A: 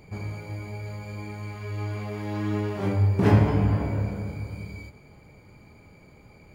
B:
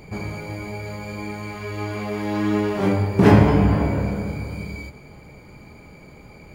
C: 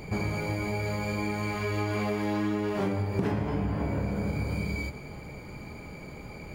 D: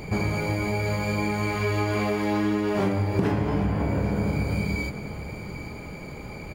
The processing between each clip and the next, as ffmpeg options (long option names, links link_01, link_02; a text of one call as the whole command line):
ffmpeg -i in.wav -af "equalizer=frequency=100:width=7.3:gain=-11.5,volume=8dB" out.wav
ffmpeg -i in.wav -af "acompressor=threshold=-27dB:ratio=16,volume=2dB" out.wav
ffmpeg -i in.wav -af "aecho=1:1:799:0.224,volume=4.5dB" out.wav